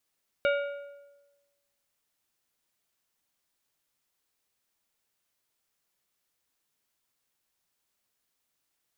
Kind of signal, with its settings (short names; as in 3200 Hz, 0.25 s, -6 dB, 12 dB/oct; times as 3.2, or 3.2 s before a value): metal hit plate, lowest mode 568 Hz, decay 1.17 s, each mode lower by 5 dB, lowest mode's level -21.5 dB